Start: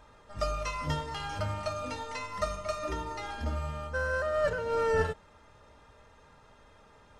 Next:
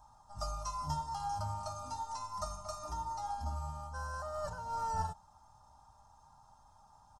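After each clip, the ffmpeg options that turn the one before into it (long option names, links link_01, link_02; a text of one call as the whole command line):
ffmpeg -i in.wav -af "firequalizer=gain_entry='entry(130,0);entry(460,-21);entry(790,10);entry(2000,-22);entry(5300,5)':delay=0.05:min_phase=1,volume=-5.5dB" out.wav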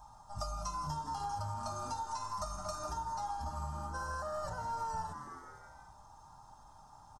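ffmpeg -i in.wav -filter_complex "[0:a]flanger=delay=5.6:depth=2.8:regen=-72:speed=1.2:shape=triangular,asplit=6[link_01][link_02][link_03][link_04][link_05][link_06];[link_02]adelay=162,afreqshift=130,volume=-16dB[link_07];[link_03]adelay=324,afreqshift=260,volume=-21dB[link_08];[link_04]adelay=486,afreqshift=390,volume=-26.1dB[link_09];[link_05]adelay=648,afreqshift=520,volume=-31.1dB[link_10];[link_06]adelay=810,afreqshift=650,volume=-36.1dB[link_11];[link_01][link_07][link_08][link_09][link_10][link_11]amix=inputs=6:normalize=0,acompressor=threshold=-45dB:ratio=6,volume=9.5dB" out.wav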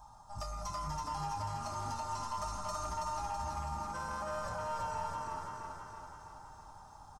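ffmpeg -i in.wav -af "asoftclip=type=tanh:threshold=-33.5dB,aecho=1:1:328|656|984|1312|1640|1968|2296|2624|2952:0.708|0.418|0.246|0.145|0.0858|0.0506|0.0299|0.0176|0.0104" out.wav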